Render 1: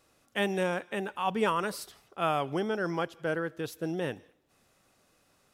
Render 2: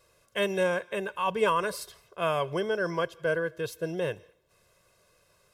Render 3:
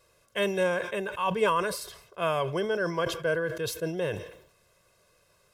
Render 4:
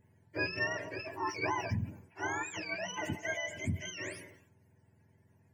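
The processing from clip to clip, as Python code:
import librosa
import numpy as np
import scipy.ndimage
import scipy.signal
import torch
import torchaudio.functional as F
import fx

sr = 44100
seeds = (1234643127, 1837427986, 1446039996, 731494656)

y1 = x + 0.81 * np.pad(x, (int(1.9 * sr / 1000.0), 0))[:len(x)]
y2 = fx.sustainer(y1, sr, db_per_s=84.0)
y3 = fx.octave_mirror(y2, sr, pivot_hz=1000.0)
y3 = y3 * librosa.db_to_amplitude(-6.0)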